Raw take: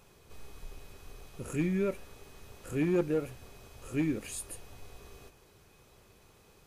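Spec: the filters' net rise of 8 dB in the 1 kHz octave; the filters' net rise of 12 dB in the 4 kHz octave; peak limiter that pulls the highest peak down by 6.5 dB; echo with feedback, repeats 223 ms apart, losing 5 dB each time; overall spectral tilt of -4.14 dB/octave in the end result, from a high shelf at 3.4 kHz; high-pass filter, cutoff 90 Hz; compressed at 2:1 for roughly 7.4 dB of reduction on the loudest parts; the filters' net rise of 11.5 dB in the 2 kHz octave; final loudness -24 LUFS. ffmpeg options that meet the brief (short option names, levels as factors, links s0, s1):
-af "highpass=90,equalizer=f=1000:t=o:g=6.5,equalizer=f=2000:t=o:g=8,highshelf=f=3400:g=7,equalizer=f=4000:t=o:g=7.5,acompressor=threshold=0.0158:ratio=2,alimiter=level_in=1.68:limit=0.0631:level=0:latency=1,volume=0.596,aecho=1:1:223|446|669|892|1115|1338|1561:0.562|0.315|0.176|0.0988|0.0553|0.031|0.0173,volume=5.96"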